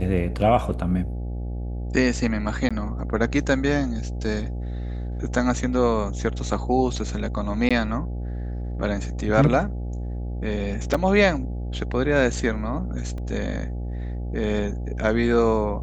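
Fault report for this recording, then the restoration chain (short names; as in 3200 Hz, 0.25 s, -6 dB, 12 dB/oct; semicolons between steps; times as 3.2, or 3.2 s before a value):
buzz 60 Hz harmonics 14 -29 dBFS
2.69–2.71 gap 16 ms
7.69–7.71 gap 16 ms
10.94–10.95 gap 5 ms
13.18 gap 2.3 ms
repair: de-hum 60 Hz, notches 14; interpolate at 2.69, 16 ms; interpolate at 7.69, 16 ms; interpolate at 10.94, 5 ms; interpolate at 13.18, 2.3 ms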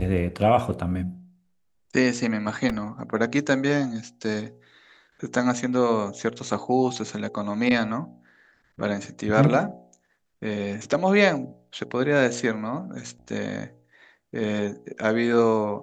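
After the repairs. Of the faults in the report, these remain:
none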